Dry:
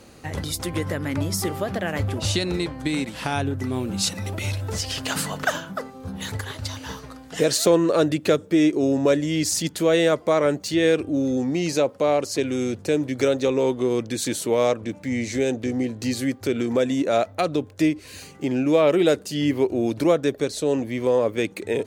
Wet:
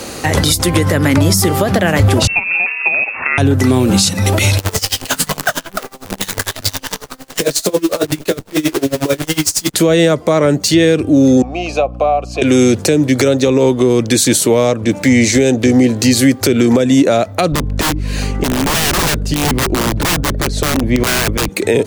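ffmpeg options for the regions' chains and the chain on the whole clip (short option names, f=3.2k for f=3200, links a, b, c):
-filter_complex "[0:a]asettb=1/sr,asplit=3[a][b][c];[a]atrim=end=2.274[d];[b]atrim=start=2.27:end=3.38,asetpts=PTS-STARTPTS,afade=t=in:d=0.004:c=qsin,afade=t=out:st=1.106:d=0.004:c=qsin,agate=range=-9dB:threshold=-22dB:ratio=16:release=100:detection=peak,lowpass=f=2.4k:t=q:w=0.5098,lowpass=f=2.4k:t=q:w=0.6013,lowpass=f=2.4k:t=q:w=0.9,lowpass=f=2.4k:t=q:w=2.563,afreqshift=-2800[e];[c]atrim=start=3.376[f];[d][e]acrossfade=d=0.004:c1=hsin:c2=qsin[g];[g][f]acrossfade=d=0.004:c1=qsin:c2=hsin,asettb=1/sr,asplit=3[h][i][j];[h]atrim=end=4.584[k];[i]atrim=start=4.58:end=9.74,asetpts=PTS-STARTPTS,afade=t=in:d=0.004:c=qsin,afade=t=out:st=5.156:d=0.004:c=qsin,flanger=delay=20:depth=2.5:speed=2.5,acrusher=bits=6:dc=4:mix=0:aa=0.000001,aeval=exprs='val(0)*pow(10,-26*(0.5-0.5*cos(2*PI*11*n/s))/20)':c=same[l];[j]atrim=start=9.736[m];[k][l]acrossfade=d=0.004:c1=hsin:c2=qsin[n];[n][m]acrossfade=d=0.004:c1=qsin:c2=hsin,asettb=1/sr,asplit=3[o][p][q];[o]atrim=end=11.424[r];[p]atrim=start=11.42:end=12.42,asetpts=PTS-STARTPTS,afade=t=in:d=0.004:c=qsin,afade=t=out:st=0.996:d=0.004:c=qsin,asplit=3[s][t][u];[s]bandpass=f=730:t=q:w=8,volume=0dB[v];[t]bandpass=f=1.09k:t=q:w=8,volume=-6dB[w];[u]bandpass=f=2.44k:t=q:w=8,volume=-9dB[x];[v][w][x]amix=inputs=3:normalize=0,aeval=exprs='val(0)+0.00708*(sin(2*PI*60*n/s)+sin(2*PI*2*60*n/s)/2+sin(2*PI*3*60*n/s)/3+sin(2*PI*4*60*n/s)/4+sin(2*PI*5*60*n/s)/5)':c=same[y];[q]atrim=start=12.416[z];[r][y]acrossfade=d=0.004:c1=hsin:c2=qsin[aa];[aa][z]acrossfade=d=0.004:c1=qsin:c2=hsin,asettb=1/sr,asplit=3[ab][ac][ad];[ab]atrim=end=17.524[ae];[ac]atrim=start=17.52:end=21.49,asetpts=PTS-STARTPTS,afade=t=in:d=0.004:c=qsin,afade=t=out:st=3.966:d=0.004:c=qsin,aeval=exprs='val(0)+0.0224*(sin(2*PI*50*n/s)+sin(2*PI*2*50*n/s)/2+sin(2*PI*3*50*n/s)/3+sin(2*PI*4*50*n/s)/4+sin(2*PI*5*50*n/s)/5)':c=same,lowpass=f=1.7k:p=1,aeval=exprs='(mod(7.5*val(0)+1,2)-1)/7.5':c=same[af];[ad]atrim=start=21.486[ag];[ae][af]acrossfade=d=0.004:c1=hsin:c2=qsin[ah];[ah][ag]acrossfade=d=0.004:c1=qsin:c2=hsin,bass=f=250:g=-6,treble=f=4k:g=4,acrossover=split=210[ai][aj];[aj]acompressor=threshold=-33dB:ratio=6[ak];[ai][ak]amix=inputs=2:normalize=0,alimiter=level_in=23dB:limit=-1dB:release=50:level=0:latency=1,volume=-1dB"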